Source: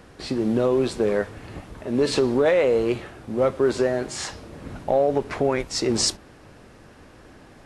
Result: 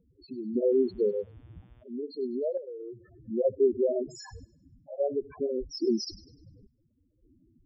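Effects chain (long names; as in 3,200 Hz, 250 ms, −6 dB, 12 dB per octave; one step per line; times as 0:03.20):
sample-and-hold tremolo 1.8 Hz, depth 85%
spectral peaks only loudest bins 4
auto-filter notch sine 7.8 Hz 530–5,400 Hz
0:00.69–0:01.82: hum with harmonics 120 Hz, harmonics 30, −64 dBFS −5 dB per octave
on a send: delay with a high-pass on its return 100 ms, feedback 38%, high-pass 3,400 Hz, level −15.5 dB
0:02.57–0:03.24: on the sum: downward compressor 6 to 1, threshold −39 dBFS, peak gain reduction 12.5 dB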